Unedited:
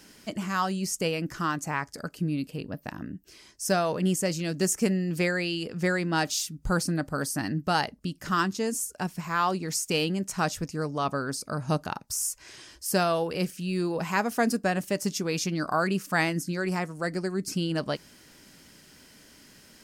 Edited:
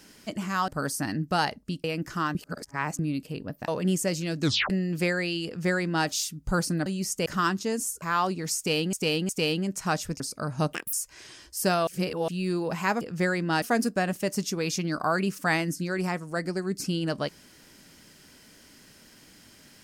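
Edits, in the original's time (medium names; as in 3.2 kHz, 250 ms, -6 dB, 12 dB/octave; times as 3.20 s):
0.68–1.08 s: swap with 7.04–8.20 s
1.59–2.23 s: reverse
2.92–3.86 s: delete
4.59 s: tape stop 0.29 s
5.64–6.25 s: copy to 14.30 s
8.96–9.26 s: delete
9.81–10.17 s: loop, 3 plays
10.72–11.30 s: delete
11.83–12.22 s: speed 194%
13.16–13.57 s: reverse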